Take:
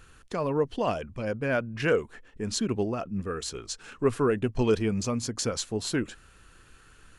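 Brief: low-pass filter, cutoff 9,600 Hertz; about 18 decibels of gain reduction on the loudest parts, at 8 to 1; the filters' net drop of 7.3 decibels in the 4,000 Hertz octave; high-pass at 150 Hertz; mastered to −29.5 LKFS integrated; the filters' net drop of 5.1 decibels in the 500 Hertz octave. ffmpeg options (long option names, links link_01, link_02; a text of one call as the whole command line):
ffmpeg -i in.wav -af "highpass=150,lowpass=9600,equalizer=frequency=500:width_type=o:gain=-6,equalizer=frequency=4000:width_type=o:gain=-9,acompressor=threshold=-42dB:ratio=8,volume=16.5dB" out.wav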